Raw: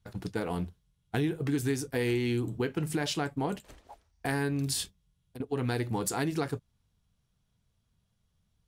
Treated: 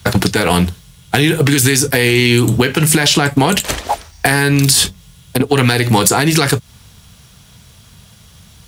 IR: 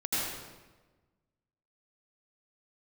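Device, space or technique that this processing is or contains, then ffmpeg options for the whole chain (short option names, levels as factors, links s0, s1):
mastering chain: -filter_complex "[0:a]highpass=55,equalizer=f=300:t=o:w=0.77:g=-2,acrossover=split=130|1600[s0][s1][s2];[s0]acompressor=threshold=0.00501:ratio=4[s3];[s1]acompressor=threshold=0.0126:ratio=4[s4];[s2]acompressor=threshold=0.00891:ratio=4[s5];[s3][s4][s5]amix=inputs=3:normalize=0,acompressor=threshold=0.00708:ratio=2,asoftclip=type=tanh:threshold=0.0355,tiltshelf=f=1300:g=-3.5,asoftclip=type=hard:threshold=0.0237,alimiter=level_in=63.1:limit=0.891:release=50:level=0:latency=1,volume=0.891"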